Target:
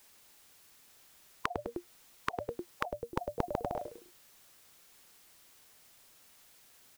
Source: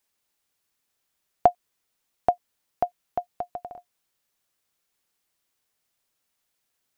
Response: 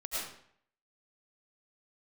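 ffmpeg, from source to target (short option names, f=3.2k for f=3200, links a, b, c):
-filter_complex "[0:a]asplit=2[a][b];[b]asplit=3[c][d][e];[c]adelay=102,afreqshift=-120,volume=-19dB[f];[d]adelay=204,afreqshift=-240,volume=-27.2dB[g];[e]adelay=306,afreqshift=-360,volume=-35.4dB[h];[f][g][h]amix=inputs=3:normalize=0[i];[a][i]amix=inputs=2:normalize=0,alimiter=limit=-15.5dB:level=0:latency=1:release=436,asettb=1/sr,asplit=3[j][k][l];[j]atrim=end=2.854[m];[k]atrim=start=2.85:end=3.76,asetpts=PTS-STARTPTS,afade=t=in:d=0.004:c=qsin,afade=t=out:st=0.906:d=0.004:c=qsin,equalizer=f=1.4k:w=0.32:g=-8[n];[l]atrim=start=3.756[o];[m][n]acrossfade=d=0.004:c1=hsin:c2=qsin[p];[p][o]acrossfade=d=0.004:c1=qsin:c2=hsin,afftfilt=real='re*lt(hypot(re,im),0.0447)':imag='im*lt(hypot(re,im),0.0447)':win_size=1024:overlap=0.75,volume=16.5dB"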